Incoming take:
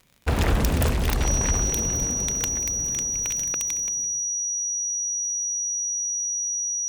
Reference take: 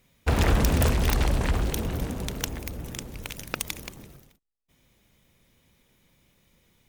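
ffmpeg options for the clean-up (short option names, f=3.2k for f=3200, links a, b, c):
-af "adeclick=t=4,bandreject=f=5.8k:w=30,asetnsamples=n=441:p=0,asendcmd='3.52 volume volume 5.5dB',volume=0dB"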